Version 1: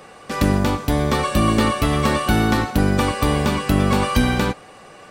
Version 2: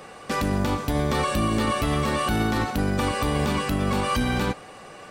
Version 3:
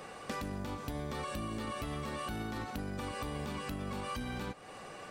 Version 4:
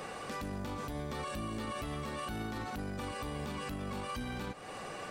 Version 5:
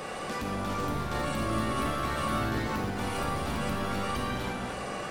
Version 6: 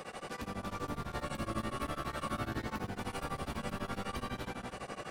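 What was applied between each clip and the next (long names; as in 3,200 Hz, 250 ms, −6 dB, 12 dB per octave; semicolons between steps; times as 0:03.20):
brickwall limiter −15 dBFS, peak gain reduction 11 dB
downward compressor 6 to 1, threshold −32 dBFS, peak gain reduction 11.5 dB; level −4.5 dB
brickwall limiter −35.5 dBFS, peak gain reduction 9.5 dB; level +4.5 dB
comb and all-pass reverb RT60 1.8 s, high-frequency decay 0.6×, pre-delay 10 ms, DRR 0.5 dB; delay with pitch and tempo change per echo 454 ms, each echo +3 semitones, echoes 3, each echo −6 dB; level +4.5 dB
tremolo along a rectified sine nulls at 12 Hz; level −5 dB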